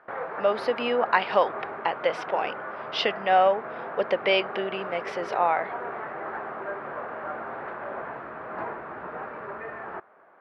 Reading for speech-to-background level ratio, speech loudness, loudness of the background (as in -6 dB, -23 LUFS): 9.5 dB, -26.0 LUFS, -35.5 LUFS